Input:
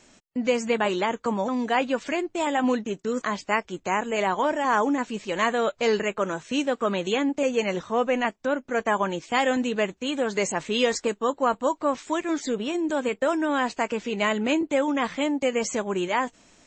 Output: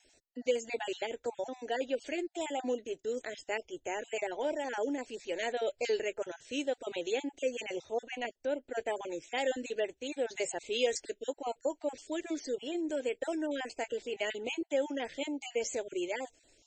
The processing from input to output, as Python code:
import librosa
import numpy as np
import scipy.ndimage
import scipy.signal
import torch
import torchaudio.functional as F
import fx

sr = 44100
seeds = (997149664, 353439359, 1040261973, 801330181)

y = fx.spec_dropout(x, sr, seeds[0], share_pct=25)
y = fx.fixed_phaser(y, sr, hz=470.0, stages=4)
y = fx.wow_flutter(y, sr, seeds[1], rate_hz=2.1, depth_cents=18.0)
y = F.gain(torch.from_numpy(y), -6.0).numpy()